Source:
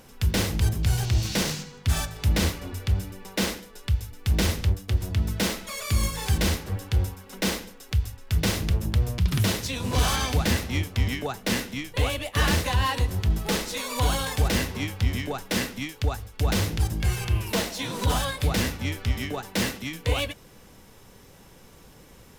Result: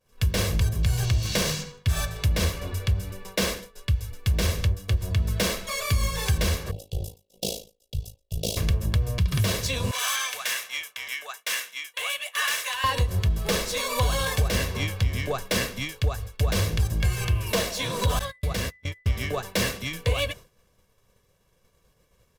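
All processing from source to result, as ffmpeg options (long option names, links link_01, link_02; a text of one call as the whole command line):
ffmpeg -i in.wav -filter_complex "[0:a]asettb=1/sr,asplit=3[link_01][link_02][link_03];[link_01]atrim=end=6.714[link_04];[link_02]atrim=start=6.71:end=8.57,asetpts=PTS-STARTPTS,afade=type=in:duration=0.004:curve=qsin,afade=type=out:start_time=1.856:duration=0.004:curve=qsin,lowshelf=frequency=200:gain=-9,tremolo=f=54:d=0.889,asuperstop=centerf=1500:order=8:qfactor=0.67[link_05];[link_03]atrim=start=8.566[link_06];[link_04][link_05]acrossfade=duration=0.004:curve1=hsin:curve2=qsin[link_07];[link_07][link_06]acrossfade=duration=0.004:curve1=qsin:curve2=hsin,asettb=1/sr,asplit=3[link_08][link_09][link_10];[link_08]atrim=end=9.914[link_11];[link_09]atrim=start=9.91:end=12.84,asetpts=PTS-STARTPTS,afade=type=in:duration=0.004:curve=qsin,afade=type=out:start_time=2.926:duration=0.004:curve=qsin,highpass=1400,equalizer=frequency=4500:width=3.2:gain=-6.5[link_12];[link_10]atrim=start=12.836[link_13];[link_11][link_12]acrossfade=duration=0.004:curve1=hsin:curve2=qsin[link_14];[link_14][link_13]acrossfade=duration=0.004:curve1=qsin:curve2=hsin,asettb=1/sr,asplit=3[link_15][link_16][link_17];[link_15]atrim=end=18.194[link_18];[link_16]atrim=start=18.19:end=19.06,asetpts=PTS-STARTPTS,afade=type=in:duration=0.004:curve=qsin,afade=type=out:start_time=0.866:duration=0.004:curve=qsin,agate=range=-38dB:threshold=-27dB:ratio=16:release=100:detection=peak,acompressor=threshold=-28dB:ratio=3:attack=3.2:release=140:knee=1:detection=peak,aeval=exprs='val(0)+0.00398*sin(2*PI*2000*n/s)':channel_layout=same[link_19];[link_17]atrim=start=19.056[link_20];[link_18][link_19]acrossfade=duration=0.004:curve1=hsin:curve2=qsin[link_21];[link_21][link_20]acrossfade=duration=0.004:curve1=qsin:curve2=hsin,agate=range=-33dB:threshold=-38dB:ratio=3:detection=peak,aecho=1:1:1.8:0.54,acompressor=threshold=-21dB:ratio=6,volume=2dB" out.wav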